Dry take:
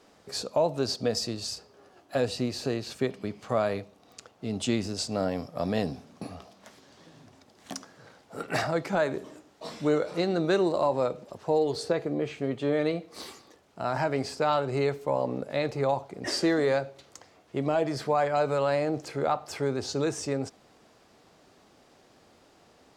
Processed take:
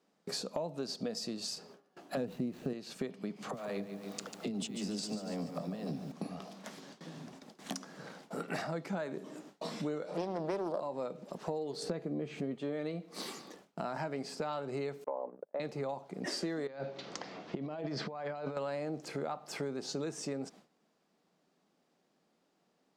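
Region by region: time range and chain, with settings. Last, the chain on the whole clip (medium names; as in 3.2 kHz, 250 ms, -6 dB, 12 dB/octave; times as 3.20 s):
2.17–2.73 s: median filter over 9 samples + bass shelf 380 Hz +11.5 dB
3.36–6.12 s: compressor with a negative ratio -32 dBFS, ratio -0.5 + phase dispersion lows, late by 42 ms, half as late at 320 Hz + bit-crushed delay 144 ms, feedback 55%, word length 9-bit, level -10 dB
10.08–10.80 s: high-pass 85 Hz 24 dB/octave + peaking EQ 640 Hz +11 dB 0.91 oct + loudspeaker Doppler distortion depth 0.3 ms
11.82–12.55 s: bass shelf 330 Hz +6.5 dB + upward compressor, threshold -29 dBFS
15.04–15.60 s: Butterworth band-pass 690 Hz, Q 0.81 + gate -35 dBFS, range -36 dB
16.67–18.57 s: low-pass 5.4 kHz 24 dB/octave + compressor with a negative ratio -35 dBFS
whole clip: gate with hold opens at -45 dBFS; resonant low shelf 130 Hz -9.5 dB, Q 3; compression 4:1, threshold -41 dBFS; trim +3.5 dB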